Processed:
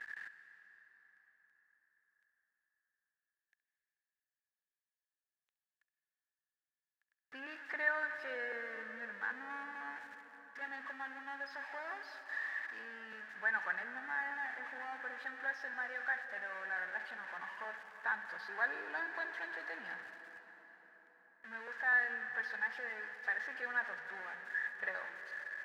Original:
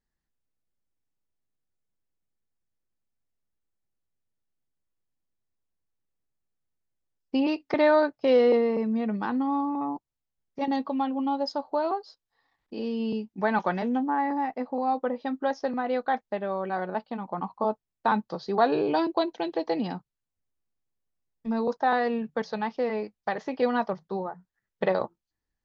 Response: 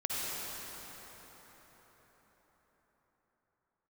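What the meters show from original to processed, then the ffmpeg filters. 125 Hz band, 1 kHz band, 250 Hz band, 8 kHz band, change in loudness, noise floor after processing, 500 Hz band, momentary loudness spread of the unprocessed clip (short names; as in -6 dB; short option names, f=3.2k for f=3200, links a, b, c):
under -30 dB, -17.5 dB, -30.5 dB, n/a, -12.0 dB, under -85 dBFS, -24.0 dB, 11 LU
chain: -filter_complex "[0:a]aeval=exprs='val(0)+0.5*0.0355*sgn(val(0))':c=same,bandpass=f=1.7k:t=q:w=15:csg=0,asplit=2[a][b];[1:a]atrim=start_sample=2205,adelay=68[c];[b][c]afir=irnorm=-1:irlink=0,volume=-14.5dB[d];[a][d]amix=inputs=2:normalize=0,volume=6dB"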